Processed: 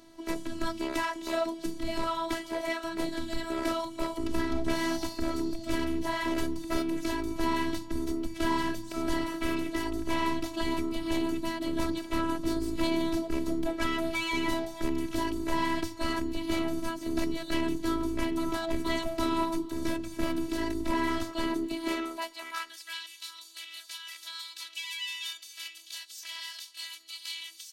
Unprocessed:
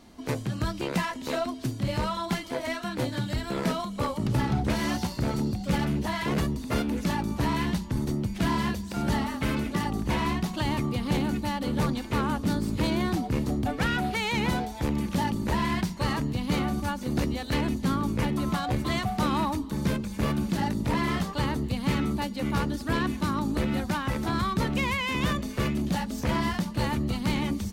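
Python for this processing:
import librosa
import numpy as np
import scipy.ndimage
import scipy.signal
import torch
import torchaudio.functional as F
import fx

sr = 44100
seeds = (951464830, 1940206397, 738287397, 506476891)

y = fx.filter_sweep_highpass(x, sr, from_hz=71.0, to_hz=3400.0, start_s=21.13, end_s=23.01, q=1.4)
y = fx.robotise(y, sr, hz=329.0)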